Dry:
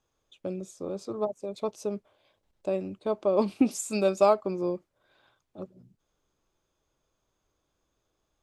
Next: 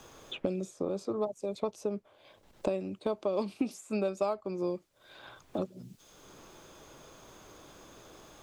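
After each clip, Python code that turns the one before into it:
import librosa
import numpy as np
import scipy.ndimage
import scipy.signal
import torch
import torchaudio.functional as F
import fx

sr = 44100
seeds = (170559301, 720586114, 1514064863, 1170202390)

y = fx.band_squash(x, sr, depth_pct=100)
y = y * 10.0 ** (-4.0 / 20.0)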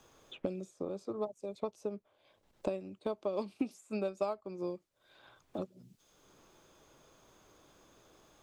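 y = fx.upward_expand(x, sr, threshold_db=-40.0, expansion=1.5)
y = y * 10.0 ** (-2.5 / 20.0)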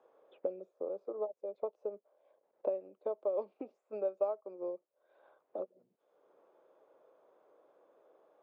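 y = fx.ladder_bandpass(x, sr, hz=600.0, resonance_pct=50)
y = y * 10.0 ** (8.5 / 20.0)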